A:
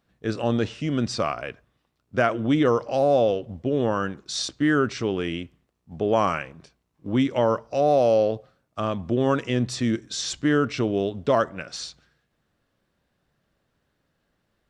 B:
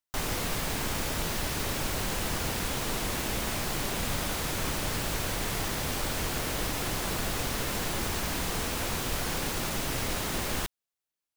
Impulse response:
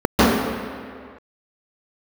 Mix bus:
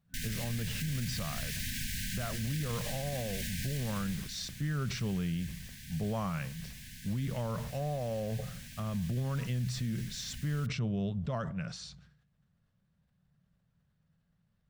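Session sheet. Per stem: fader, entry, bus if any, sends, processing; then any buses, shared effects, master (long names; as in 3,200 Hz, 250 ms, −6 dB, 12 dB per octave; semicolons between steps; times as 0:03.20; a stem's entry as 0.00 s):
−11.5 dB, 0.00 s, no send, low shelf with overshoot 230 Hz +10 dB, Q 3; brickwall limiter −12.5 dBFS, peak gain reduction 6.5 dB; level that may fall only so fast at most 70 dB per second
0:03.79 −3.5 dB → 0:04.40 −16 dB, 0.00 s, no send, brick-wall band-stop 260–1,500 Hz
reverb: not used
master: brickwall limiter −26.5 dBFS, peak gain reduction 8 dB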